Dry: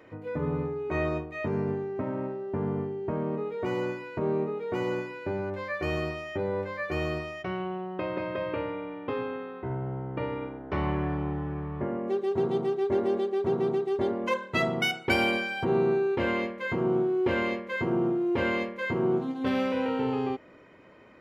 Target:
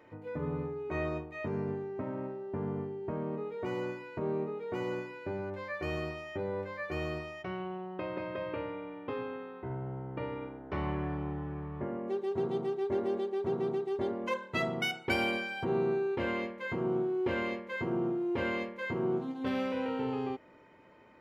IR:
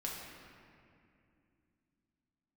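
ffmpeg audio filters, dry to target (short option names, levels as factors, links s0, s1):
-af "aeval=exprs='val(0)+0.00112*sin(2*PI*890*n/s)':c=same,volume=0.531"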